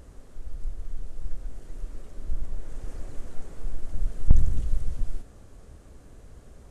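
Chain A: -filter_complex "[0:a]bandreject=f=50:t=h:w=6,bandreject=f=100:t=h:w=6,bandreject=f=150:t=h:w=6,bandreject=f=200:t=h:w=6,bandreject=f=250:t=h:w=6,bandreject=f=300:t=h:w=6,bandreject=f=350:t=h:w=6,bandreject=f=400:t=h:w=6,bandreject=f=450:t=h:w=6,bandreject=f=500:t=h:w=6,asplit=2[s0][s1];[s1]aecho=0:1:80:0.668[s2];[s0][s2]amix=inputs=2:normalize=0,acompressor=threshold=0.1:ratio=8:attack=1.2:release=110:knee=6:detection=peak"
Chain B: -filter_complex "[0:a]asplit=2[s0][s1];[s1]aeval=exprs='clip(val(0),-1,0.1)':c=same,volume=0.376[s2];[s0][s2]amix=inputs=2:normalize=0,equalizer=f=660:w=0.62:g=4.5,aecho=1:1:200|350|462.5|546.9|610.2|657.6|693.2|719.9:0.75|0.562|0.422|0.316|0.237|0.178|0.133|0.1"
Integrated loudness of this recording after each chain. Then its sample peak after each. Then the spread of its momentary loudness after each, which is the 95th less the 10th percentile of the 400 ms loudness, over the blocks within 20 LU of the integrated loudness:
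-41.5 LUFS, -29.5 LUFS; -17.5 dBFS, -1.5 dBFS; 14 LU, 21 LU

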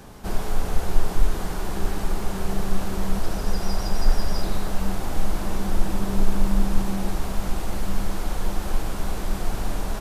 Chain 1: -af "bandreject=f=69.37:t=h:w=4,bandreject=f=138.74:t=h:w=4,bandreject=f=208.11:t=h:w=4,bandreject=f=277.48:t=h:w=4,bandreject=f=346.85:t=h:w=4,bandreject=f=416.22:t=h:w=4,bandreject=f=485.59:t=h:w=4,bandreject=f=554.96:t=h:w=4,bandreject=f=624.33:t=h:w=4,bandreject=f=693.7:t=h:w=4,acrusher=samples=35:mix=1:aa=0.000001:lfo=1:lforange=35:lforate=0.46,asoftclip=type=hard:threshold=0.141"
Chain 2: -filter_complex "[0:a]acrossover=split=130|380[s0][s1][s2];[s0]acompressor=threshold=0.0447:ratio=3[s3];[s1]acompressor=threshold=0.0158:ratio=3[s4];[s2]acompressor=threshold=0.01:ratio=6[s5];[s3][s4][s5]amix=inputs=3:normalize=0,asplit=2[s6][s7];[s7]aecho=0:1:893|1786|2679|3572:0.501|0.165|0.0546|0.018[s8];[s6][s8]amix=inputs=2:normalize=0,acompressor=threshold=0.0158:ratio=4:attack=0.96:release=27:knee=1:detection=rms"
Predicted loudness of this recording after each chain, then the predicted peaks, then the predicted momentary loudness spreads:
-31.5 LUFS, -43.5 LUFS; -17.0 dBFS, -29.5 dBFS; 4 LU, 2 LU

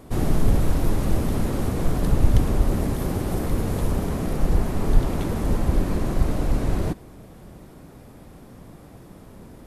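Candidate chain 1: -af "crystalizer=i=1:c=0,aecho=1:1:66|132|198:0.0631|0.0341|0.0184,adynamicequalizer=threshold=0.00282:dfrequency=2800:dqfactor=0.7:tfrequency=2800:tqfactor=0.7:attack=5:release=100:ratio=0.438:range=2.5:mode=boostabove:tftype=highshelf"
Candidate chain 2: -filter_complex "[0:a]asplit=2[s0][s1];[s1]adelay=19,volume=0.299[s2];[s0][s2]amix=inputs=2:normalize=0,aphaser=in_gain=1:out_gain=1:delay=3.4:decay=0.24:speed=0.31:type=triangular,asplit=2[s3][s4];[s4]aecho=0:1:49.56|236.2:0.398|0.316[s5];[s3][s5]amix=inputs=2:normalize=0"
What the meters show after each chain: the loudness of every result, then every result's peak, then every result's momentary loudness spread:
-24.0 LUFS, -22.5 LUFS; -3.0 dBFS, -2.0 dBFS; 4 LU, 5 LU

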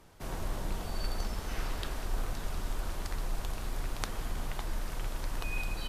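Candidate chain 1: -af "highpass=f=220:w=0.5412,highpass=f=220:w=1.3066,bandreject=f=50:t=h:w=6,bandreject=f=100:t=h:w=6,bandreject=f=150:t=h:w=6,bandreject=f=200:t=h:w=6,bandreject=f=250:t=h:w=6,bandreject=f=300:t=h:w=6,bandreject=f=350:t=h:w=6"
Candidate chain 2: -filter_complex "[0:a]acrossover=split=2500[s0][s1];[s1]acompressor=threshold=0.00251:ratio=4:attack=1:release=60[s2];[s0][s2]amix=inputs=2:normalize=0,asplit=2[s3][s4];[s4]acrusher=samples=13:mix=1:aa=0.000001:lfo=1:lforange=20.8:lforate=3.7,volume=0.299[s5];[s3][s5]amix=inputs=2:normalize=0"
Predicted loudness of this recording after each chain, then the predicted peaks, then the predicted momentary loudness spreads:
-42.5 LUFS, -37.5 LUFS; -10.5 dBFS, -15.5 dBFS; 4 LU, 2 LU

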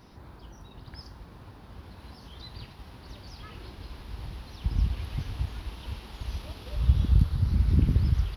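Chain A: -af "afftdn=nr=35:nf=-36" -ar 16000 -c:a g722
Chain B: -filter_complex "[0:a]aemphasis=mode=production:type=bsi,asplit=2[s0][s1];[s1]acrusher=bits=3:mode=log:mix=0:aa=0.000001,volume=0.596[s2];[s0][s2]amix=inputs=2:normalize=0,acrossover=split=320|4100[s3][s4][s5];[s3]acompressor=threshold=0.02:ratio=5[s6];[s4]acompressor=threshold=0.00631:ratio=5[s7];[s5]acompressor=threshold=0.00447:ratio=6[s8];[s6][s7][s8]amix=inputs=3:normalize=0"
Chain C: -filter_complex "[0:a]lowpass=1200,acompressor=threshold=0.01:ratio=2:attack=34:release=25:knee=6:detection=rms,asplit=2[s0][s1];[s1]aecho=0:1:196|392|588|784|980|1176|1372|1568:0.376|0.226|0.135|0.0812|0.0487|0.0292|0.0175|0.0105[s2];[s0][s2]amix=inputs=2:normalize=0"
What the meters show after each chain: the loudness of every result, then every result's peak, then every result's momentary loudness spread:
-28.5 LUFS, -41.0 LUFS, -39.0 LUFS; -8.5 dBFS, -23.0 dBFS, -19.5 dBFS; 23 LU, 9 LU, 15 LU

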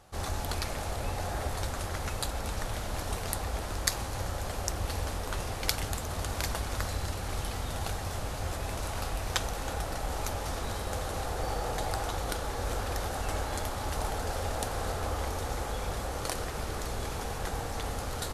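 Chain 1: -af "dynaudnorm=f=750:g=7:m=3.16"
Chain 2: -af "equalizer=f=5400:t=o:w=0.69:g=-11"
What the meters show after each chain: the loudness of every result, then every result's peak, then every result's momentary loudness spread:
-28.0 LUFS, -35.0 LUFS; -1.0 dBFS, -7.5 dBFS; 10 LU, 2 LU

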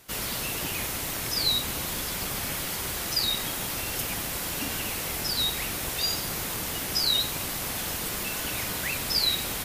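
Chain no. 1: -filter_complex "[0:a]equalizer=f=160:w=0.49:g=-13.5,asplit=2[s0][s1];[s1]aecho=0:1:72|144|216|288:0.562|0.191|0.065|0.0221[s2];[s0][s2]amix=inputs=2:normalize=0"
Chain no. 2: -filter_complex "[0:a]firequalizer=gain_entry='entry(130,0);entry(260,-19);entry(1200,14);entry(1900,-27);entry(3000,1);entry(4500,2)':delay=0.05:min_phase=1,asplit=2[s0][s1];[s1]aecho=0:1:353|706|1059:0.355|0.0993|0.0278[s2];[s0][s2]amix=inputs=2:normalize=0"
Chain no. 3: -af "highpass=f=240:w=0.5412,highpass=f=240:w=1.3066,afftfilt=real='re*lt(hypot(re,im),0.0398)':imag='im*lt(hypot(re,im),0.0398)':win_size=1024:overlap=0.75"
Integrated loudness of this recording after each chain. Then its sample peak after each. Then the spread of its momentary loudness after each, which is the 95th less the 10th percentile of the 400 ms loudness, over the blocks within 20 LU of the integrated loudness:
-26.5 LUFS, -25.0 LUFS, -31.0 LUFS; -11.5 dBFS, -10.0 dBFS, -20.0 dBFS; 6 LU, 6 LU, 0 LU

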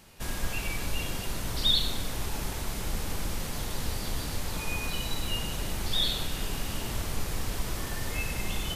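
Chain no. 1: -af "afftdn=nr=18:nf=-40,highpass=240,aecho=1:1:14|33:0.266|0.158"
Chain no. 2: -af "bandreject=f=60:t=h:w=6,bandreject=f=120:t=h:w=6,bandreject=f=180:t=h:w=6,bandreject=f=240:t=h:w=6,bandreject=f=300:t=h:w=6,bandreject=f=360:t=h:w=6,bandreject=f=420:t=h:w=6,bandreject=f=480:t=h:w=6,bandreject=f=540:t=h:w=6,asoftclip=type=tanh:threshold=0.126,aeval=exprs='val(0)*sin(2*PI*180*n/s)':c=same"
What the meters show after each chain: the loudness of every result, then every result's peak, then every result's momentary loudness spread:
-34.5 LUFS, -33.5 LUFS; -15.0 dBFS, -19.0 dBFS; 14 LU, 5 LU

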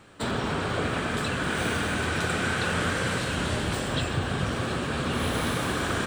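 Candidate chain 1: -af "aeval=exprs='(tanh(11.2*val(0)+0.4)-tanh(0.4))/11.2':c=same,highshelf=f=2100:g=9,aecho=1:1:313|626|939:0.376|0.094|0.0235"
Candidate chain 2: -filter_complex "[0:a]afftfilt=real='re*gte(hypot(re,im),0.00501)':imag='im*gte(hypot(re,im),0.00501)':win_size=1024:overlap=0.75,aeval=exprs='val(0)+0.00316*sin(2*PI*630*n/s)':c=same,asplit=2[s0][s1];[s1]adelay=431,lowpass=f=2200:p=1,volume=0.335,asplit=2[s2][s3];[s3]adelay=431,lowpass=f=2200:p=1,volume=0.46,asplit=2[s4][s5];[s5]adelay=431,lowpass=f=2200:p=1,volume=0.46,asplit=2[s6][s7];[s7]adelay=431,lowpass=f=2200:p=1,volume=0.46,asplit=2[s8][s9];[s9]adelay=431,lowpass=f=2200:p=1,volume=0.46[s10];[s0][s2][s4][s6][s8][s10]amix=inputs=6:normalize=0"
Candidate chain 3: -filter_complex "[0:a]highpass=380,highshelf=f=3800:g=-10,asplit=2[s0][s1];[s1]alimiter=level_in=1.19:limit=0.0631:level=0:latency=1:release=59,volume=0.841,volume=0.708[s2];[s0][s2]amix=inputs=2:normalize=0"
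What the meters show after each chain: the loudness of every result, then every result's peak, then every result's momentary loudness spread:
-26.0 LUFS, -27.0 LUFS, -27.5 LUFS; -13.0 dBFS, -13.0 dBFS, -15.5 dBFS; 3 LU, 2 LU, 3 LU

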